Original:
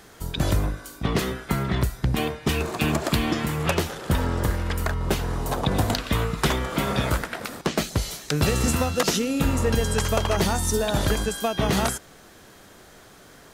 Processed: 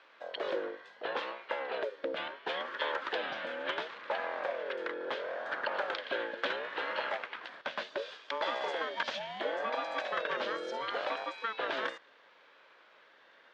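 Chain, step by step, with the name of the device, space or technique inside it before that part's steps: voice changer toy (ring modulator with a swept carrier 570 Hz, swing 30%, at 0.71 Hz; cabinet simulation 490–3900 Hz, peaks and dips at 520 Hz +5 dB, 760 Hz -6 dB, 1.6 kHz +9 dB, 3.3 kHz +5 dB); trim -8.5 dB

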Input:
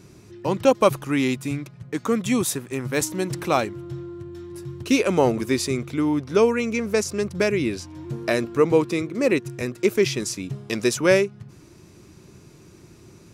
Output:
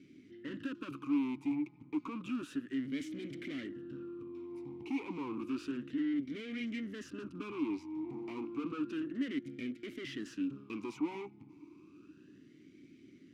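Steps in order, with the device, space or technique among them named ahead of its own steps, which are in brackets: talk box (valve stage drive 33 dB, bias 0.75; talking filter i-u 0.31 Hz); trim +7 dB

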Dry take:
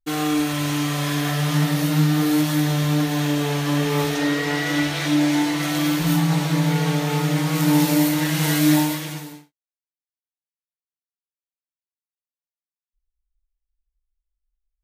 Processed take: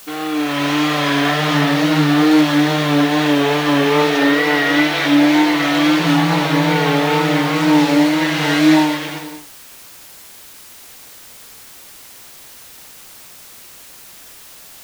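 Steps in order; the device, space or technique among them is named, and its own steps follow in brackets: dictaphone (band-pass 290–3800 Hz; level rider gain up to 11.5 dB; wow and flutter; white noise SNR 23 dB)

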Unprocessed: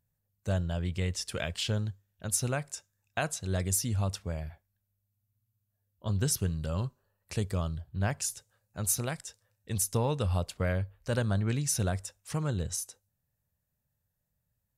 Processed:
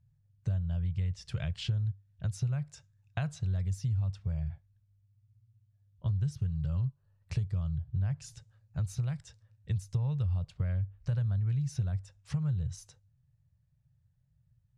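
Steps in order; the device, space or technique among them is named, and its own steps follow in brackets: jukebox (low-pass 5.1 kHz 12 dB/octave; resonant low shelf 190 Hz +12 dB, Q 3; compression 4:1, threshold -28 dBFS, peak gain reduction 16 dB); trim -3 dB

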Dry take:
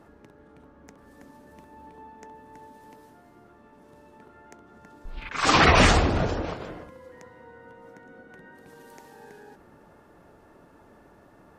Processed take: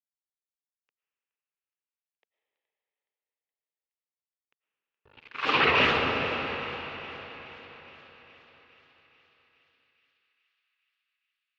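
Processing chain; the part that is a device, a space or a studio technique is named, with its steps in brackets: blown loudspeaker (crossover distortion -35.5 dBFS; cabinet simulation 170–3800 Hz, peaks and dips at 190 Hz -8 dB, 310 Hz -4 dB, 450 Hz +4 dB, 690 Hz -7 dB, 2.7 kHz +8 dB); thinning echo 420 ms, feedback 70%, high-pass 810 Hz, level -18 dB; algorithmic reverb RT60 4.6 s, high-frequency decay 0.85×, pre-delay 70 ms, DRR 4.5 dB; trim -4.5 dB

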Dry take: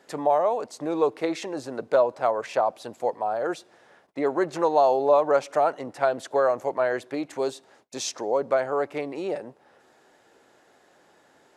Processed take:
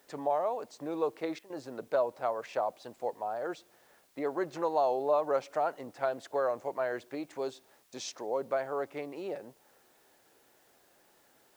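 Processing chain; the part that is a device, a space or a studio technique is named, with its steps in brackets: worn cassette (low-pass 7.2 kHz; wow and flutter; level dips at 1.39 s, 109 ms -14 dB; white noise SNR 34 dB); trim -8.5 dB

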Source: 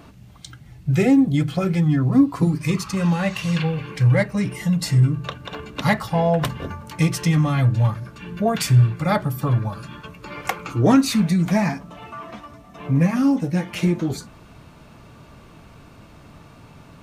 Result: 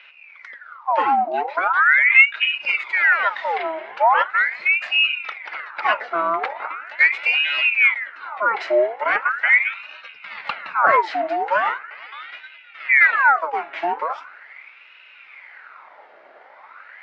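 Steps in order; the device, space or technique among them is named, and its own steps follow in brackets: voice changer toy (ring modulator with a swept carrier 1.6 kHz, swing 70%, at 0.4 Hz; cabinet simulation 590–3600 Hz, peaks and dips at 600 Hz +4 dB, 890 Hz +4 dB, 1.4 kHz +7 dB, 2.1 kHz +8 dB, 3.3 kHz -6 dB); 10.15–10.96 s: resonant low shelf 240 Hz +7.5 dB, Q 1.5

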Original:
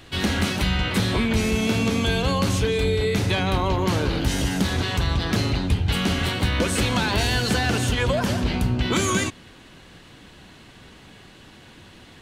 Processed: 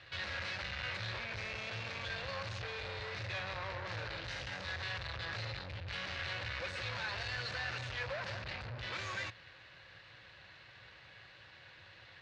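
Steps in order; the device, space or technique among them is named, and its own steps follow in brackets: scooped metal amplifier (valve stage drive 31 dB, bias 0.55; cabinet simulation 95–4100 Hz, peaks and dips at 110 Hz +6 dB, 210 Hz -5 dB, 320 Hz +10 dB, 540 Hz +10 dB, 1.7 kHz +4 dB, 3.2 kHz -8 dB; amplifier tone stack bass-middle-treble 10-0-10); trim +1.5 dB

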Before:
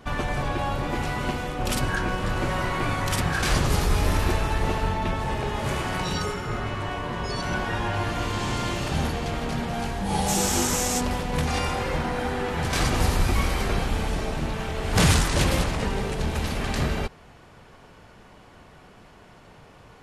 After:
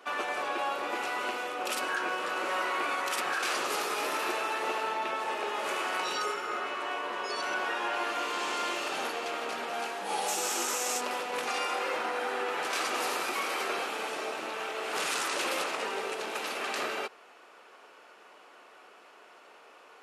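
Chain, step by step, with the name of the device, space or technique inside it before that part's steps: laptop speaker (high-pass 360 Hz 24 dB/octave; peaking EQ 1.3 kHz +6 dB 0.34 oct; peaking EQ 2.6 kHz +5.5 dB 0.27 oct; peak limiter -18 dBFS, peak gain reduction 9 dB); trim -3.5 dB

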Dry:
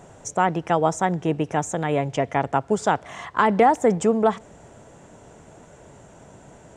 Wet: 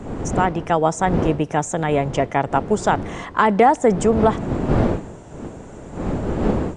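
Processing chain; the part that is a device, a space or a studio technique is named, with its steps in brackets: smartphone video outdoors (wind noise 360 Hz -28 dBFS; level rider gain up to 4 dB; AAC 96 kbps 22.05 kHz)

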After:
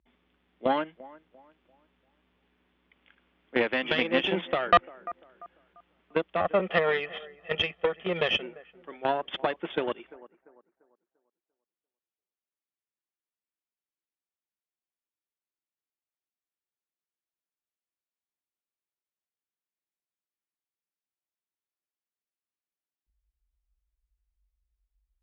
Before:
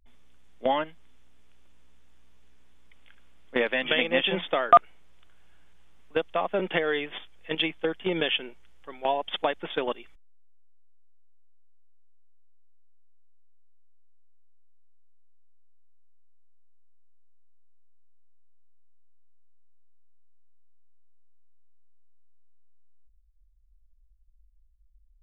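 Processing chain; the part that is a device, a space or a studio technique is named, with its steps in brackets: 6.40–8.43 s: comb 1.6 ms, depth 94%; analogue delay pedal into a guitar amplifier (bucket-brigade echo 344 ms, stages 4096, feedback 33%, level -20 dB; valve stage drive 16 dB, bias 0.8; cabinet simulation 81–3400 Hz, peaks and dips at 130 Hz -9 dB, 200 Hz +3 dB, 340 Hz +6 dB); trim +3.5 dB

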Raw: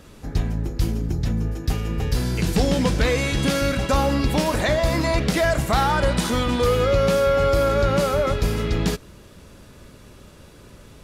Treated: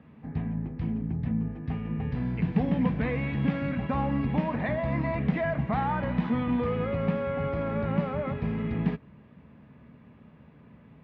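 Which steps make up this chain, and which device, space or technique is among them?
bass cabinet (cabinet simulation 73–2200 Hz, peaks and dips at 98 Hz -7 dB, 150 Hz +6 dB, 230 Hz +7 dB, 360 Hz -9 dB, 550 Hz -6 dB, 1.4 kHz -9 dB); trim -6 dB

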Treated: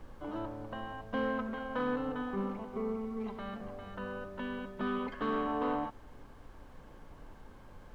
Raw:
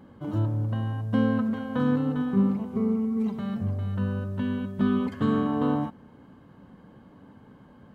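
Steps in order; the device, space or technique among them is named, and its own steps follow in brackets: aircraft cabin announcement (band-pass 460–3100 Hz; saturation -24.5 dBFS, distortion -20 dB; brown noise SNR 13 dB)

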